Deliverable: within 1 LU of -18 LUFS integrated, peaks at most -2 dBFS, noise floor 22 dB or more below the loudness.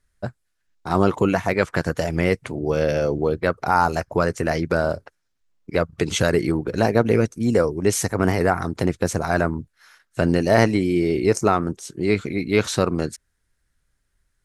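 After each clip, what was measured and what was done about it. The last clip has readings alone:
loudness -21.5 LUFS; peak -1.5 dBFS; loudness target -18.0 LUFS
-> gain +3.5 dB; limiter -2 dBFS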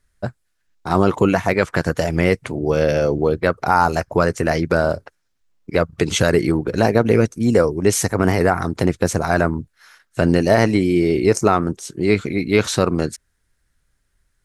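loudness -18.5 LUFS; peak -2.0 dBFS; noise floor -68 dBFS

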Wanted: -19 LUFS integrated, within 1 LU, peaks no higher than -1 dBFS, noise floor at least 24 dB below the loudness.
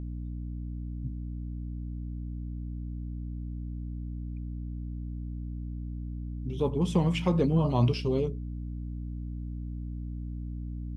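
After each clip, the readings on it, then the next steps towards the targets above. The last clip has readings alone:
hum 60 Hz; harmonics up to 300 Hz; hum level -33 dBFS; loudness -33.0 LUFS; peak -12.0 dBFS; loudness target -19.0 LUFS
-> de-hum 60 Hz, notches 5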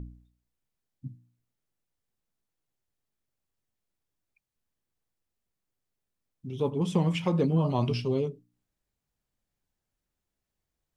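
hum none; loudness -28.0 LUFS; peak -12.0 dBFS; loudness target -19.0 LUFS
-> gain +9 dB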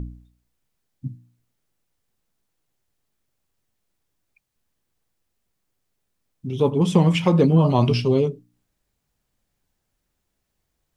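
loudness -19.0 LUFS; peak -3.0 dBFS; noise floor -77 dBFS

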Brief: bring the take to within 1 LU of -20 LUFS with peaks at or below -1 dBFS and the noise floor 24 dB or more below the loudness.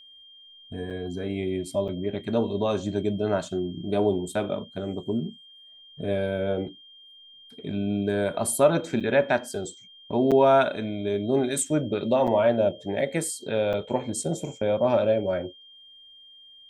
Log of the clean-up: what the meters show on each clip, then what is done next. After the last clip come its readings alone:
dropouts 6; longest dropout 6.8 ms; steady tone 3200 Hz; tone level -48 dBFS; loudness -26.0 LUFS; peak -7.5 dBFS; loudness target -20.0 LUFS
-> interpolate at 0.9/1.88/9/10.31/12.27/13.73, 6.8 ms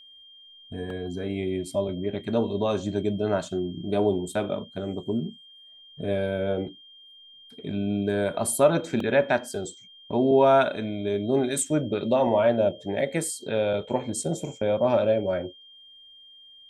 dropouts 0; steady tone 3200 Hz; tone level -48 dBFS
-> notch 3200 Hz, Q 30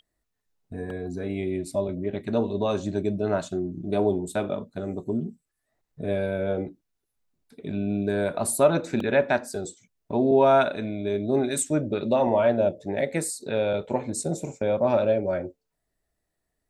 steady tone none; loudness -26.0 LUFS; peak -7.5 dBFS; loudness target -20.0 LUFS
-> gain +6 dB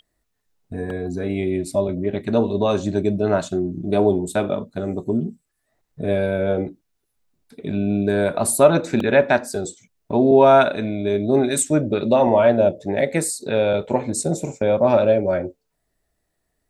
loudness -20.0 LUFS; peak -1.5 dBFS; noise floor -74 dBFS

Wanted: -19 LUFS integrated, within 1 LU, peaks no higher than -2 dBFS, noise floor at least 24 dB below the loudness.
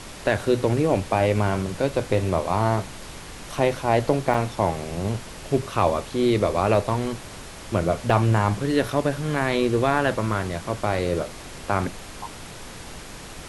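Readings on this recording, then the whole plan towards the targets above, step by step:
dropouts 2; longest dropout 3.0 ms; noise floor -39 dBFS; noise floor target -48 dBFS; loudness -23.5 LUFS; peak -4.0 dBFS; loudness target -19.0 LUFS
-> interpolate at 4.34/8.1, 3 ms; noise print and reduce 9 dB; gain +4.5 dB; limiter -2 dBFS

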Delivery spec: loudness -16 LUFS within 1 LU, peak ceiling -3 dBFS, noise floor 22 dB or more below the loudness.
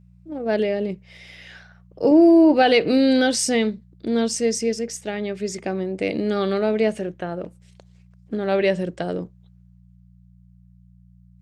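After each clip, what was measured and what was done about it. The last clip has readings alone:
hum 60 Hz; harmonics up to 180 Hz; hum level -48 dBFS; loudness -20.5 LUFS; peak -4.5 dBFS; loudness target -16.0 LUFS
-> de-hum 60 Hz, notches 3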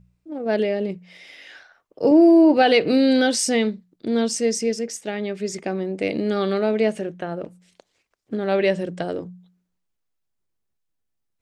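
hum none; loudness -20.5 LUFS; peak -4.5 dBFS; loudness target -16.0 LUFS
-> gain +4.5 dB; limiter -3 dBFS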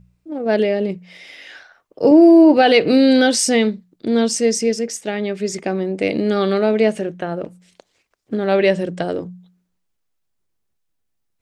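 loudness -16.5 LUFS; peak -3.0 dBFS; noise floor -71 dBFS

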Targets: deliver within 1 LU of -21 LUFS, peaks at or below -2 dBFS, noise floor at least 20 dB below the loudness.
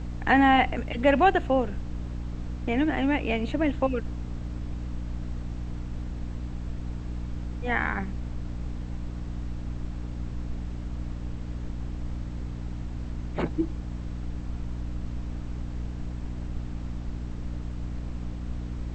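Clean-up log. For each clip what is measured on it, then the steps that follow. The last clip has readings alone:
hum 60 Hz; harmonics up to 300 Hz; hum level -32 dBFS; noise floor -35 dBFS; noise floor target -50 dBFS; loudness -30.0 LUFS; peak -6.5 dBFS; loudness target -21.0 LUFS
-> de-hum 60 Hz, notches 5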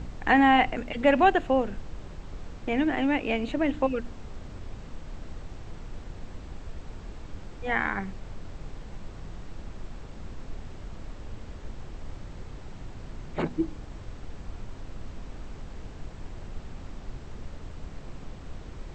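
hum none; noise floor -43 dBFS; noise floor target -46 dBFS
-> noise print and reduce 6 dB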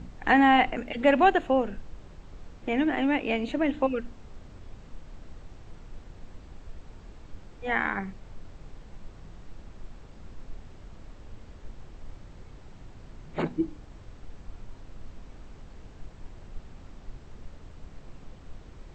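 noise floor -49 dBFS; loudness -25.5 LUFS; peak -7.5 dBFS; loudness target -21.0 LUFS
-> gain +4.5 dB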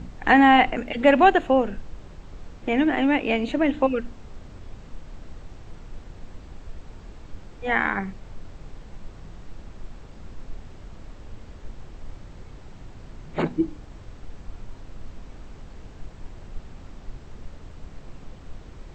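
loudness -21.0 LUFS; peak -3.0 dBFS; noise floor -44 dBFS

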